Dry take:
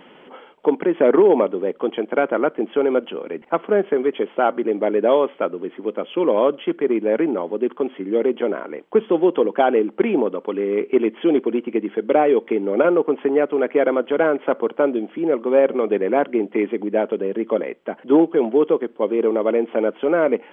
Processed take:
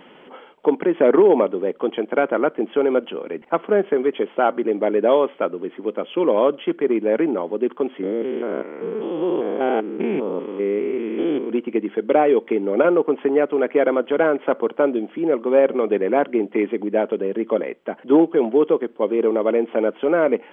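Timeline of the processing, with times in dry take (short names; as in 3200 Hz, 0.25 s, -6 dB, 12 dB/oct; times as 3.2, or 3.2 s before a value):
8.03–11.5 stepped spectrum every 0.2 s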